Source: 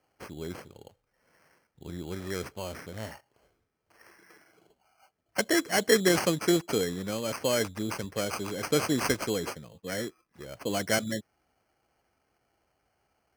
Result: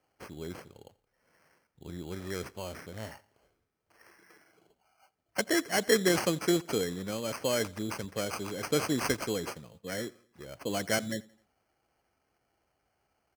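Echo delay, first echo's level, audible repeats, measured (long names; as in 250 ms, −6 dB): 86 ms, −23.5 dB, 2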